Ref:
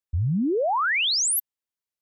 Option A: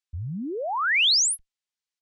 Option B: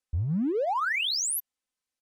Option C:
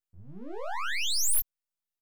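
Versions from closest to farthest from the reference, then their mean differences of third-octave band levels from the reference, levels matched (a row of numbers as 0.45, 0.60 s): A, B, C; 1.5, 7.0, 14.5 dB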